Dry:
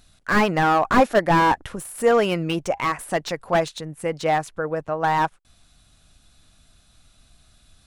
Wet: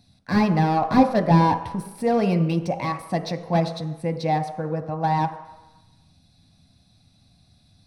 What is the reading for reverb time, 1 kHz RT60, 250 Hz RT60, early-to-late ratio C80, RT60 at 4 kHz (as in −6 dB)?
1.0 s, 1.1 s, 0.80 s, 11.5 dB, 1.0 s